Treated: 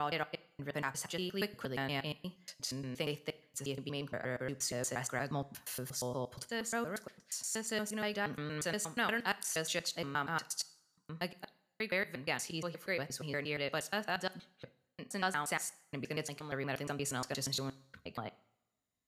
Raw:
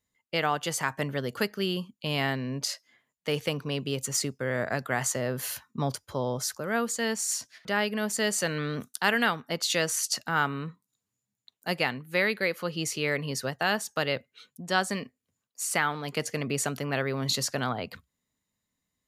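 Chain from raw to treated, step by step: slices in reverse order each 0.118 s, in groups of 5; two-slope reverb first 0.56 s, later 1.5 s, from -20 dB, DRR 15 dB; gain -8.5 dB

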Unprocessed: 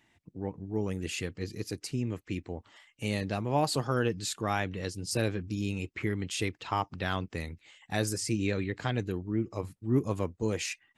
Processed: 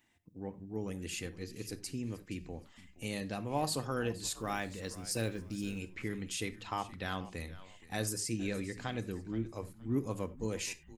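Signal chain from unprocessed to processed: high shelf 8700 Hz +11 dB; 4.3–5.79 short-mantissa float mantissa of 4-bit; frequency-shifting echo 0.471 s, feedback 30%, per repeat -91 Hz, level -17 dB; on a send at -11.5 dB: reverb, pre-delay 4 ms; on the sum: gain -6.5 dB

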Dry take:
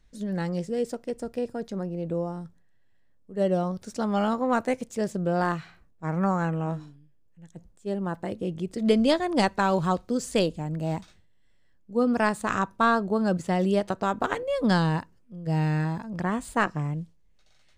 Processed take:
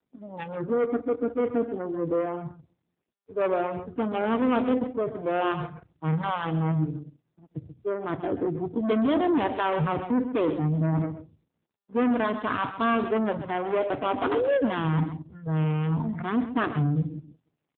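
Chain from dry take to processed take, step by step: Wiener smoothing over 25 samples; on a send at -15 dB: running mean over 25 samples + reverb RT60 0.55 s, pre-delay 32 ms; on the sum: dynamic EQ 290 Hz, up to +5 dB, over -46 dBFS, Q 7; sample leveller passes 5; reverse; compressor 6:1, threshold -26 dBFS, peak gain reduction 13.5 dB; reverse; spectral noise reduction 19 dB; HPF 43 Hz 24 dB/oct; notches 60/120 Hz; echo 0.133 s -11 dB; gain +3.5 dB; AMR-NB 7.4 kbps 8000 Hz

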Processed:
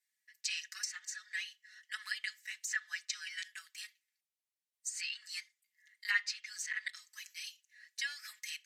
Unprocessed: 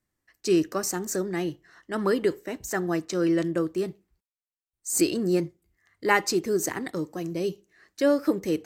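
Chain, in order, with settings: elliptic high-pass 1800 Hz, stop band 80 dB; comb 4.7 ms, depth 90%; treble ducked by the level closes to 3000 Hz, closed at -27.5 dBFS; gain -1.5 dB

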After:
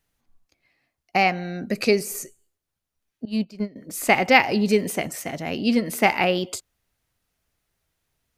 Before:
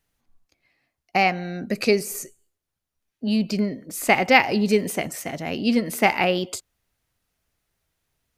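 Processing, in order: 3.25–3.76 gate -20 dBFS, range -18 dB

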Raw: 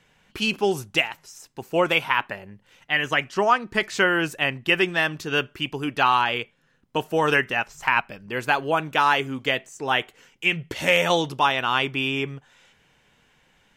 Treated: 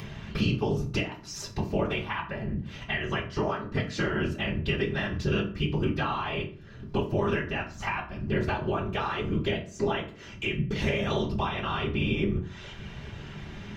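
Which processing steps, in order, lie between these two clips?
whisperiser; compressor 4:1, threshold -35 dBFS, peak gain reduction 18.5 dB; air absorption 270 m; upward compressor, threshold -40 dBFS; tone controls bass +11 dB, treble +15 dB; reverb RT60 0.45 s, pre-delay 3 ms, DRR -1 dB; gain +1.5 dB

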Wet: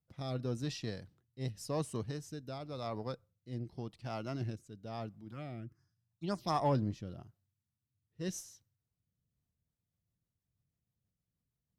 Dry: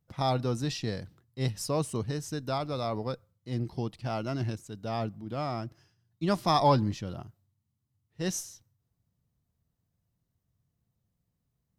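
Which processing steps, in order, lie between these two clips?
5.31–6.75 envelope phaser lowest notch 370 Hz, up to 4200 Hz, full sweep at -21 dBFS; rotary speaker horn 0.9 Hz, later 6.3 Hz, at 9.13; added harmonics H 7 -30 dB, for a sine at -14.5 dBFS; gain -5 dB

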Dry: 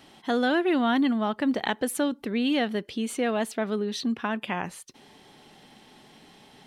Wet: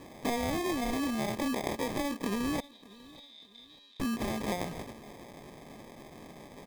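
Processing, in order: spectral dilation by 60 ms; compressor 10:1, threshold -29 dBFS, peak gain reduction 12 dB; sample-and-hold 31×; 2.6–4 band-pass 3700 Hz, Q 17; feedback echo 0.594 s, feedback 36%, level -21.5 dB

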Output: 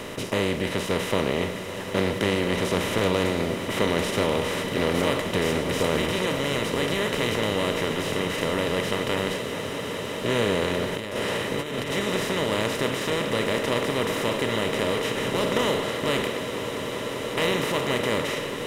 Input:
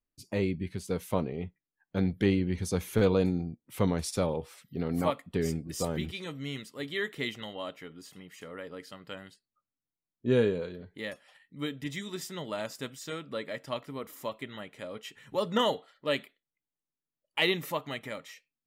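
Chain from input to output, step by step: per-bin compression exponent 0.2; swelling echo 0.195 s, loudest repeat 8, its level -17 dB; 10.92–11.91 negative-ratio compressor -23 dBFS, ratio -0.5; gain -5 dB

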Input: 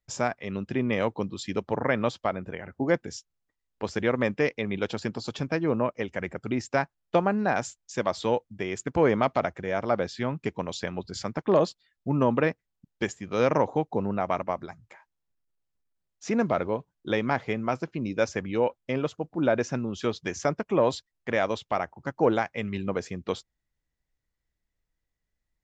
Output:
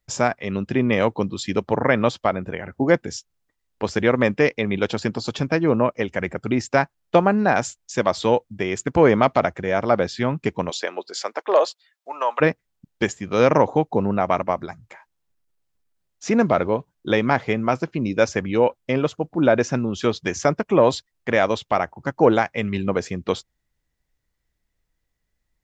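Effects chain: 10.69–12.4 HPF 320 Hz -> 730 Hz 24 dB/oct; gain +7 dB

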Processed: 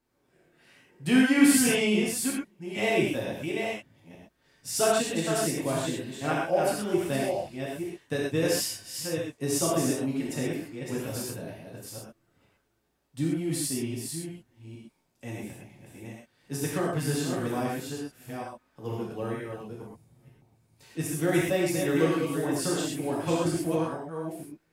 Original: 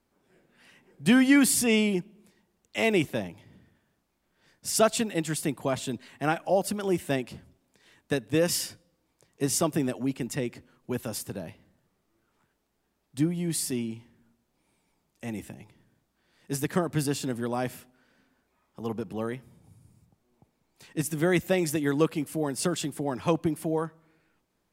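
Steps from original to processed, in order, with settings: reverse delay 0.461 s, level -5.5 dB; non-linear reverb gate 0.15 s flat, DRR -5 dB; gain -6.5 dB

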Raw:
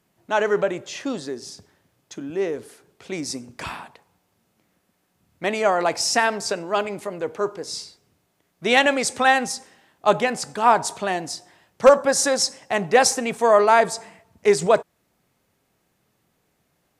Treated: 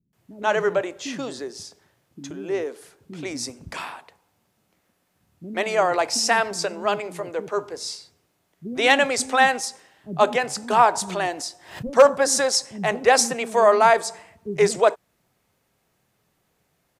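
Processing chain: bands offset in time lows, highs 0.13 s, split 270 Hz; 10.7–11.86 backwards sustainer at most 98 dB/s

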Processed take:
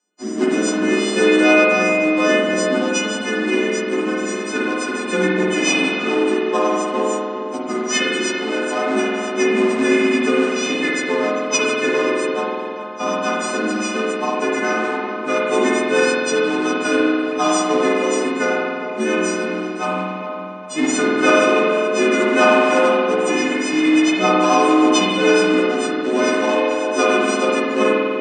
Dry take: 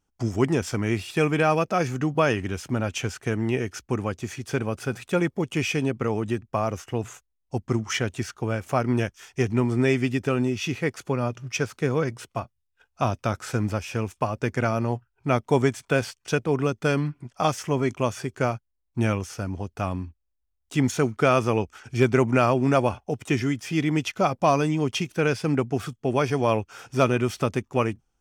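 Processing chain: frequency quantiser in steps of 3 st; rotary speaker horn 0.65 Hz, later 7 Hz, at 2.83; in parallel at -10 dB: decimation with a swept rate 37×, swing 100% 2.4 Hz; on the sum: Chebyshev band-pass 200–8500 Hz, order 5; on a send: dark delay 0.409 s, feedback 35%, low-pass 2100 Hz, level -8 dB; on the sum: spring tank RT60 2.1 s, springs 48 ms, chirp 40 ms, DRR -5 dB; gain +3 dB

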